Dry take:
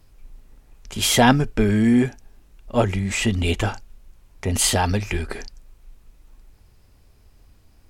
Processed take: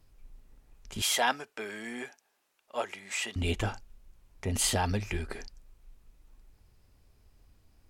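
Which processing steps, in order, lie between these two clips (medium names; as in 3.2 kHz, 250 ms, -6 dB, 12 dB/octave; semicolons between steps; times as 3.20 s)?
1.02–3.36 s: high-pass 680 Hz 12 dB/octave; trim -8.5 dB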